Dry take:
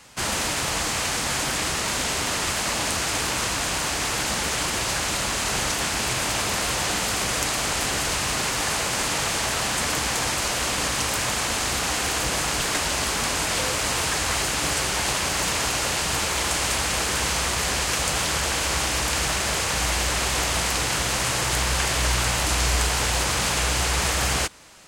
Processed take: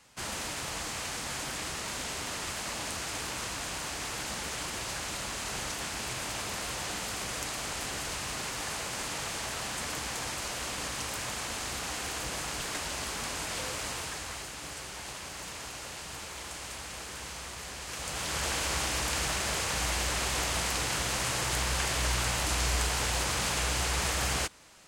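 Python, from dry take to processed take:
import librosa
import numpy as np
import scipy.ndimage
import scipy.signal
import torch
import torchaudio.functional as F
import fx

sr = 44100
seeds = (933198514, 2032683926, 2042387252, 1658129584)

y = fx.gain(x, sr, db=fx.line((13.82, -11.0), (14.52, -17.0), (17.79, -17.0), (18.45, -7.0)))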